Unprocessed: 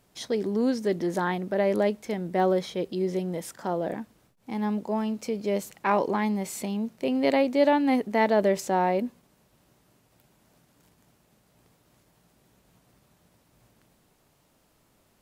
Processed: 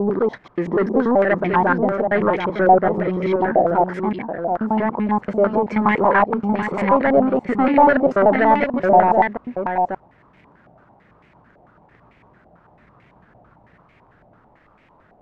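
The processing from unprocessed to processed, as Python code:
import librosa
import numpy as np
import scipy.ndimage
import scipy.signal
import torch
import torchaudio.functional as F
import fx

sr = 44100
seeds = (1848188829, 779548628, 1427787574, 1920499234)

p1 = fx.block_reorder(x, sr, ms=96.0, group=6)
p2 = 10.0 ** (-22.0 / 20.0) * np.tanh(p1 / 10.0 ** (-22.0 / 20.0))
p3 = p2 + fx.echo_single(p2, sr, ms=731, db=-6.0, dry=0)
p4 = fx.filter_held_lowpass(p3, sr, hz=9.0, low_hz=730.0, high_hz=2200.0)
y = F.gain(torch.from_numpy(p4), 8.5).numpy()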